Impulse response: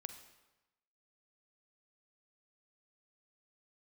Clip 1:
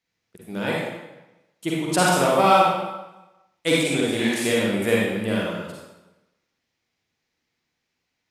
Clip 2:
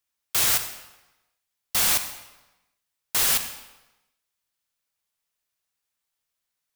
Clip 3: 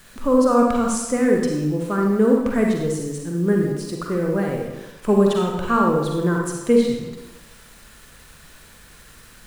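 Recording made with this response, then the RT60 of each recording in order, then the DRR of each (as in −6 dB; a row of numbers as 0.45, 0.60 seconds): 2; 1.0, 1.0, 1.0 seconds; −5.5, 8.0, −0.5 decibels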